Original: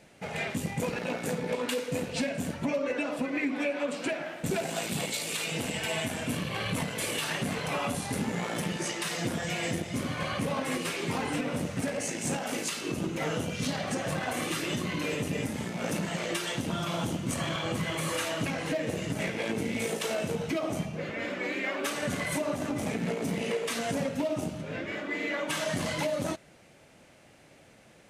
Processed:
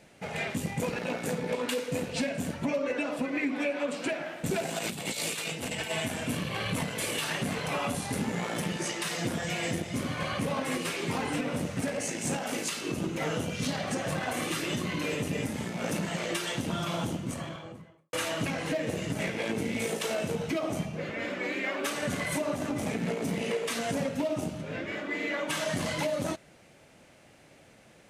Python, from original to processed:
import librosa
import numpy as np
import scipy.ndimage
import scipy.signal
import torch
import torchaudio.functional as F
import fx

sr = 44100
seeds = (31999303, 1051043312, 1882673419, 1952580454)

y = fx.over_compress(x, sr, threshold_db=-35.0, ratio=-0.5, at=(4.78, 5.89), fade=0.02)
y = fx.studio_fade_out(y, sr, start_s=16.87, length_s=1.26)